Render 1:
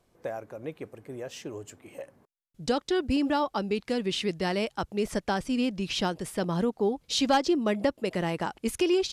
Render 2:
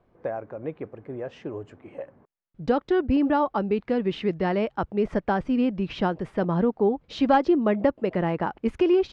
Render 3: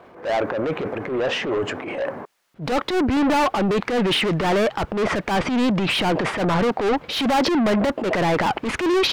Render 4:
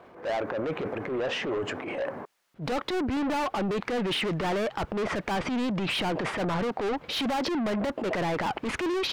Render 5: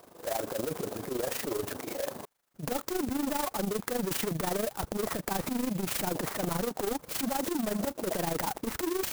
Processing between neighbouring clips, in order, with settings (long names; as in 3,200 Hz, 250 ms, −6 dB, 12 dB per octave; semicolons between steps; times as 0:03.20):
low-pass filter 1,700 Hz 12 dB per octave; level +4.5 dB
mid-hump overdrive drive 33 dB, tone 4,600 Hz, clips at −9.5 dBFS; transient designer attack −9 dB, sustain +6 dB; level −2.5 dB
downward compressor, threshold −22 dBFS, peak gain reduction 6 dB; level −4.5 dB
amplitude modulation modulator 25 Hz, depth 60%; converter with an unsteady clock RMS 0.095 ms